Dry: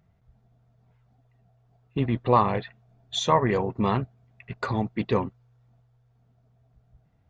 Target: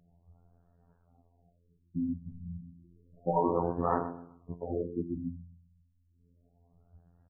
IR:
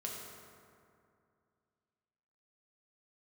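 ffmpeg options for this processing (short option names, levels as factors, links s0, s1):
-filter_complex "[0:a]lowpass=2500,bandreject=f=45.77:t=h:w=4,bandreject=f=91.54:t=h:w=4,bandreject=f=137.31:t=h:w=4,bandreject=f=183.08:t=h:w=4,bandreject=f=228.85:t=h:w=4,bandreject=f=274.62:t=h:w=4,bandreject=f=320.39:t=h:w=4,bandreject=f=366.16:t=h:w=4,bandreject=f=411.93:t=h:w=4,bandreject=f=457.7:t=h:w=4,bandreject=f=503.47:t=h:w=4,bandreject=f=549.24:t=h:w=4,bandreject=f=595.01:t=h:w=4,bandreject=f=640.78:t=h:w=4,bandreject=f=686.55:t=h:w=4,bandreject=f=732.32:t=h:w=4,bandreject=f=778.09:t=h:w=4,bandreject=f=823.86:t=h:w=4,bandreject=f=869.63:t=h:w=4,bandreject=f=915.4:t=h:w=4,bandreject=f=961.17:t=h:w=4,bandreject=f=1006.94:t=h:w=4,bandreject=f=1052.71:t=h:w=4,bandreject=f=1098.48:t=h:w=4,bandreject=f=1144.25:t=h:w=4,bandreject=f=1190.02:t=h:w=4,bandreject=f=1235.79:t=h:w=4,bandreject=f=1281.56:t=h:w=4,bandreject=f=1327.33:t=h:w=4,bandreject=f=1373.1:t=h:w=4,bandreject=f=1418.87:t=h:w=4,bandreject=f=1464.64:t=h:w=4,bandreject=f=1510.41:t=h:w=4,bandreject=f=1556.18:t=h:w=4,acrossover=split=260|1800[s0][s1][s2];[s0]acompressor=threshold=0.0158:ratio=6[s3];[s3][s1][s2]amix=inputs=3:normalize=0,afftfilt=real='hypot(re,im)*cos(PI*b)':imag='0':win_size=2048:overlap=0.75,flanger=delay=4:depth=7.8:regen=-57:speed=1.2:shape=sinusoidal,asoftclip=type=tanh:threshold=0.0944,aecho=1:1:128|256|384:0.2|0.0658|0.0217,afftfilt=real='re*lt(b*sr/1024,230*pow(1900/230,0.5+0.5*sin(2*PI*0.31*pts/sr)))':imag='im*lt(b*sr/1024,230*pow(1900/230,0.5+0.5*sin(2*PI*0.31*pts/sr)))':win_size=1024:overlap=0.75,volume=2.51"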